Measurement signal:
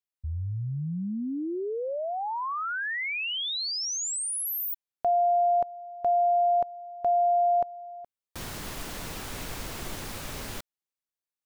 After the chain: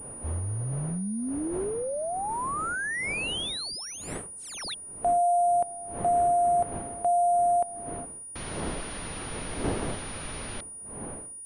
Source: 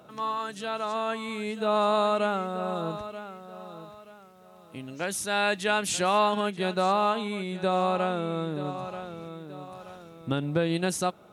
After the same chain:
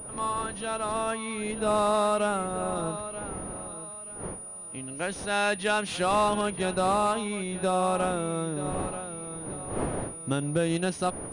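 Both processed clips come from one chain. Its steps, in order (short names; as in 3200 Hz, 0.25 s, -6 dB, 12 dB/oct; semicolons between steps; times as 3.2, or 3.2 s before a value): wind noise 500 Hz -41 dBFS; hard clip -17 dBFS; pulse-width modulation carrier 9600 Hz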